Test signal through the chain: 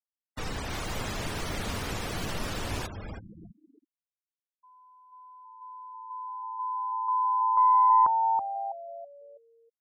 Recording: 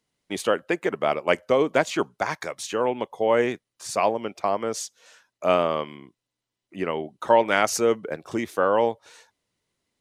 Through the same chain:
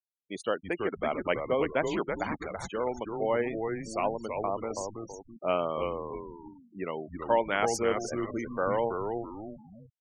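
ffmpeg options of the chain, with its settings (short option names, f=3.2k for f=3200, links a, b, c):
-filter_complex "[0:a]asplit=6[a][b][c][d][e][f];[b]adelay=327,afreqshift=-110,volume=-5dB[g];[c]adelay=654,afreqshift=-220,volume=-13.2dB[h];[d]adelay=981,afreqshift=-330,volume=-21.4dB[i];[e]adelay=1308,afreqshift=-440,volume=-29.5dB[j];[f]adelay=1635,afreqshift=-550,volume=-37.7dB[k];[a][g][h][i][j][k]amix=inputs=6:normalize=0,aeval=exprs='0.668*(cos(1*acos(clip(val(0)/0.668,-1,1)))-cos(1*PI/2))+0.015*(cos(2*acos(clip(val(0)/0.668,-1,1)))-cos(2*PI/2))+0.00422*(cos(3*acos(clip(val(0)/0.668,-1,1)))-cos(3*PI/2))':c=same,afftfilt=real='re*gte(hypot(re,im),0.0355)':imag='im*gte(hypot(re,im),0.0355)':win_size=1024:overlap=0.75,volume=-7.5dB"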